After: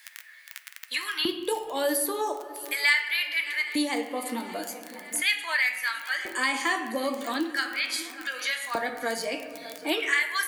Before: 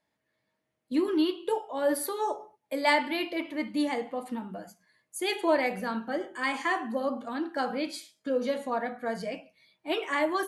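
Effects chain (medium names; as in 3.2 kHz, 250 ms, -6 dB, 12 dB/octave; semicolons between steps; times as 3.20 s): crackle 19 per s -40 dBFS; tilt EQ +3.5 dB/octave; LFO high-pass square 0.4 Hz 290–1800 Hz; shuffle delay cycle 788 ms, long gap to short 3:1, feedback 30%, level -24 dB; reverberation RT60 1.3 s, pre-delay 7 ms, DRR 8.5 dB; three bands compressed up and down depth 70%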